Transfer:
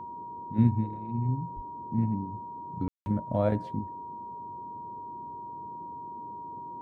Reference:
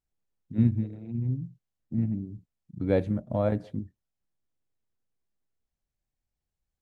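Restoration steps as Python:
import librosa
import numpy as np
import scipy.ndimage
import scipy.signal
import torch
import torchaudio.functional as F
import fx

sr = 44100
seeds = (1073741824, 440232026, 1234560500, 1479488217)

y = fx.notch(x, sr, hz=950.0, q=30.0)
y = fx.fix_deplosive(y, sr, at_s=(1.55,))
y = fx.fix_ambience(y, sr, seeds[0], print_start_s=3.98, print_end_s=4.48, start_s=2.88, end_s=3.06)
y = fx.noise_reduce(y, sr, print_start_s=3.98, print_end_s=4.48, reduce_db=30.0)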